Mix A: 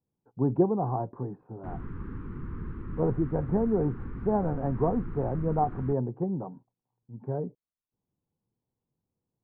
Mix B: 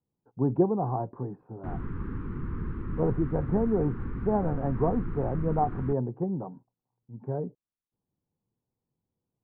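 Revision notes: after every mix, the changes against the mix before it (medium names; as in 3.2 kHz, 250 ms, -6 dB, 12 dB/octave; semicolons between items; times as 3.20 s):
background +3.5 dB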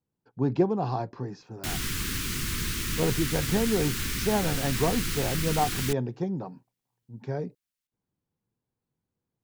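master: remove low-pass 1.1 kHz 24 dB/octave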